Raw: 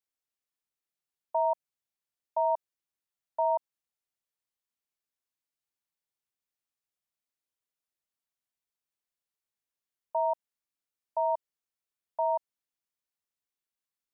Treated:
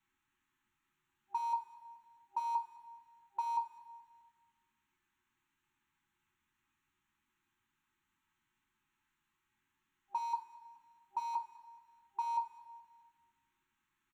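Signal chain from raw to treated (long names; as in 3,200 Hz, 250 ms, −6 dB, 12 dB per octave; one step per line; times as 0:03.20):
adaptive Wiener filter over 9 samples
brick-wall band-stop 380–800 Hz
dynamic equaliser 520 Hz, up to −4 dB, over −43 dBFS, Q 0.93
in parallel at −3 dB: compressor whose output falls as the input rises −45 dBFS, ratio −1
on the sum: brickwall limiter −30 dBFS, peak gain reduction 5 dB
0:10.16–0:11.34: double-tracking delay 21 ms −9 dB
on a send: repeating echo 213 ms, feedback 42%, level −19 dB
on the sum: coupled-rooms reverb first 0.31 s, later 1.5 s, DRR 1.5 dB
level +3 dB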